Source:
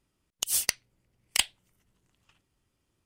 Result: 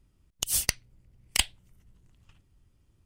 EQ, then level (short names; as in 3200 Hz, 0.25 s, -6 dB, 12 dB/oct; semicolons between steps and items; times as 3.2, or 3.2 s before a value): low shelf 120 Hz +11.5 dB; low shelf 250 Hz +7 dB; 0.0 dB